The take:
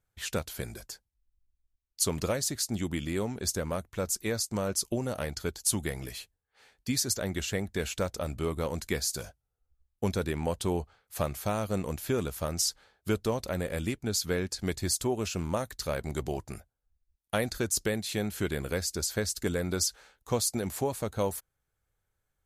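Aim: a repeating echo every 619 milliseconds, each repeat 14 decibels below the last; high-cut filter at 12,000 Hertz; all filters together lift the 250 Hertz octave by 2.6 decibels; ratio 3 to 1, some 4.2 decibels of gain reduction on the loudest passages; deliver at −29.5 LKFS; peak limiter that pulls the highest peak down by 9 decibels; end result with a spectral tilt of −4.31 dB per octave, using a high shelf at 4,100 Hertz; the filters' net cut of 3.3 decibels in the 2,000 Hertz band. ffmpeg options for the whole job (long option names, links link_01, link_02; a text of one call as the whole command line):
ffmpeg -i in.wav -af "lowpass=12000,equalizer=frequency=250:width_type=o:gain=3.5,equalizer=frequency=2000:width_type=o:gain=-5,highshelf=frequency=4100:gain=3.5,acompressor=threshold=-28dB:ratio=3,alimiter=limit=-24dB:level=0:latency=1,aecho=1:1:619|1238:0.2|0.0399,volume=6dB" out.wav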